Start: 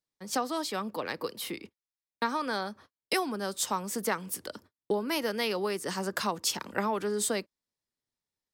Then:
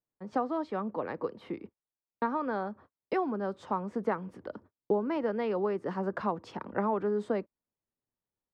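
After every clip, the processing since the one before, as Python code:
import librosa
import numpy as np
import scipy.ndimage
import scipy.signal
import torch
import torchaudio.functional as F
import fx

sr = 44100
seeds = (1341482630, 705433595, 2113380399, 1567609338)

y = scipy.signal.sosfilt(scipy.signal.butter(2, 1100.0, 'lowpass', fs=sr, output='sos'), x)
y = F.gain(torch.from_numpy(y), 1.5).numpy()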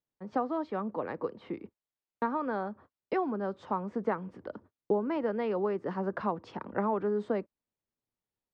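y = fx.air_absorb(x, sr, metres=90.0)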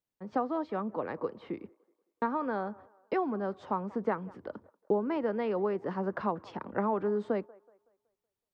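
y = fx.echo_wet_bandpass(x, sr, ms=187, feedback_pct=38, hz=800.0, wet_db=-21.5)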